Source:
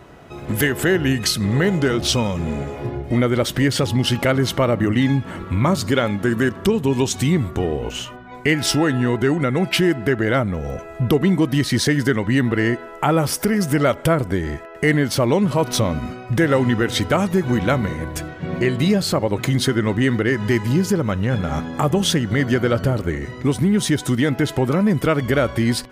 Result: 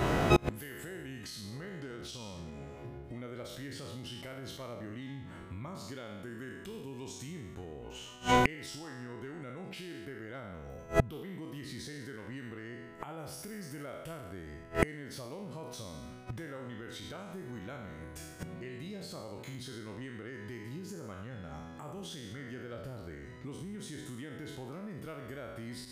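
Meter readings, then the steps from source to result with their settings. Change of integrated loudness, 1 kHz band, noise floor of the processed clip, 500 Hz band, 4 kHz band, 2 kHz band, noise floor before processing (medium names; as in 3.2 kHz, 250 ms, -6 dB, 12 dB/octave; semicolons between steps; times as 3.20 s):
-20.0 dB, -13.5 dB, -48 dBFS, -19.5 dB, -20.0 dB, -18.0 dB, -37 dBFS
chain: spectral sustain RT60 0.80 s; compression 3:1, threshold -23 dBFS, peak gain reduction 10 dB; peak limiter -16 dBFS, peak gain reduction 6.5 dB; inverted gate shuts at -23 dBFS, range -31 dB; trim +12.5 dB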